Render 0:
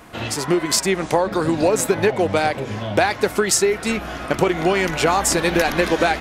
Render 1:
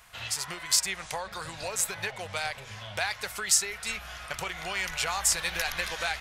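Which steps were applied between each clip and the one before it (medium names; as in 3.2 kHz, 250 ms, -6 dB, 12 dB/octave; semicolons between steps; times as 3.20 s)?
amplifier tone stack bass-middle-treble 10-0-10; trim -3.5 dB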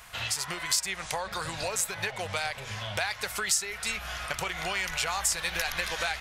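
compression 2:1, threshold -37 dBFS, peak gain reduction 10.5 dB; trim +6 dB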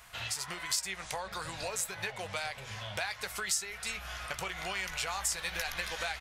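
doubling 16 ms -12 dB; trim -5.5 dB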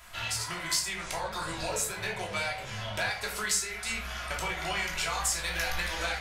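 simulated room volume 490 m³, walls furnished, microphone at 2.9 m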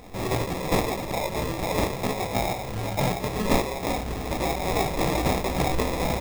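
sample-rate reducer 1.5 kHz, jitter 0%; trim +7 dB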